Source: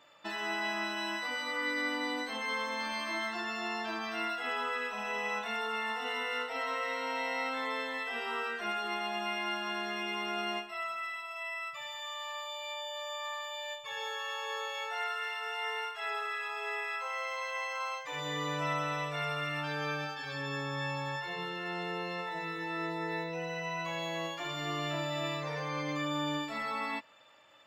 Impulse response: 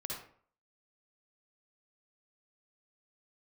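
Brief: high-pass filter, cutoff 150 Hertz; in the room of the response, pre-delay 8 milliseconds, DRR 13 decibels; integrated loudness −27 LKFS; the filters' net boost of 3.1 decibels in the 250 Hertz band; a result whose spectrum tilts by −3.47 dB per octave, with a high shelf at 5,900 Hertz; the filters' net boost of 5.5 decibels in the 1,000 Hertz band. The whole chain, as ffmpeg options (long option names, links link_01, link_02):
-filter_complex "[0:a]highpass=150,equalizer=frequency=250:width_type=o:gain=4.5,equalizer=frequency=1000:width_type=o:gain=6.5,highshelf=frequency=5900:gain=6,asplit=2[link_01][link_02];[1:a]atrim=start_sample=2205,adelay=8[link_03];[link_02][link_03]afir=irnorm=-1:irlink=0,volume=-13.5dB[link_04];[link_01][link_04]amix=inputs=2:normalize=0,volume=4.5dB"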